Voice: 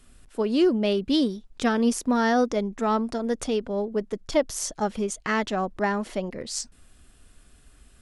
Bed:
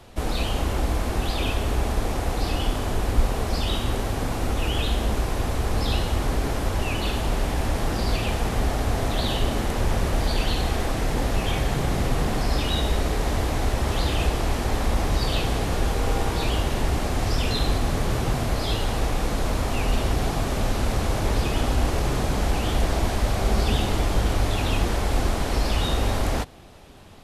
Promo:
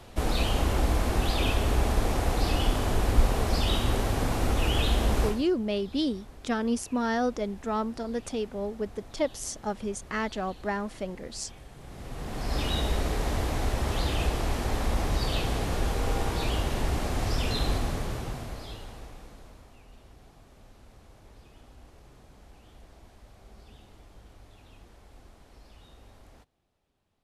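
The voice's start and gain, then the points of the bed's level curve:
4.85 s, -5.5 dB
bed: 5.27 s -1 dB
5.48 s -24.5 dB
11.74 s -24.5 dB
12.61 s -4.5 dB
17.76 s -4.5 dB
19.84 s -30 dB

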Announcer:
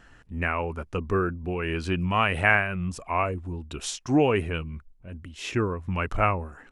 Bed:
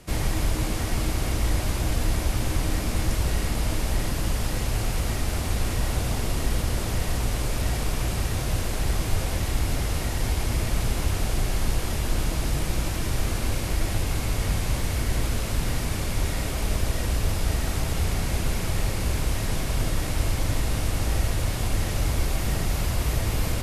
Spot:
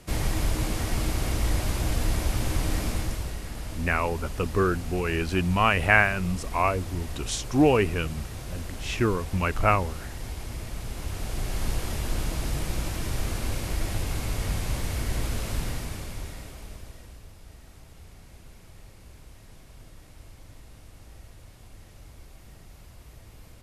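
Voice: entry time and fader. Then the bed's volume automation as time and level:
3.45 s, +1.5 dB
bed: 2.86 s -1.5 dB
3.39 s -10.5 dB
10.83 s -10.5 dB
11.66 s -3.5 dB
15.57 s -3.5 dB
17.30 s -23.5 dB

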